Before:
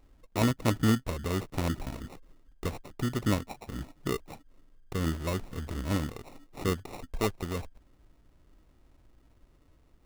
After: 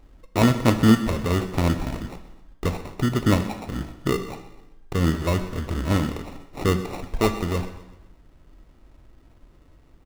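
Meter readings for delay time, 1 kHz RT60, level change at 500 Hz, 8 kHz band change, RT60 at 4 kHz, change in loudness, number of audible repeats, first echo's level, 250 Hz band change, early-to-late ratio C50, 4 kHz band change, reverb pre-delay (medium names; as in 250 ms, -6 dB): 127 ms, 0.95 s, +8.5 dB, +5.0 dB, 0.95 s, +8.5 dB, 3, -17.0 dB, +9.0 dB, 10.0 dB, +7.0 dB, 10 ms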